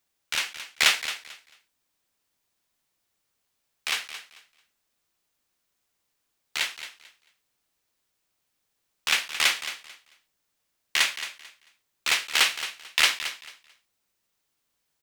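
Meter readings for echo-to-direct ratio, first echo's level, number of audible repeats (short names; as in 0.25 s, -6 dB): -12.0 dB, -12.0 dB, 2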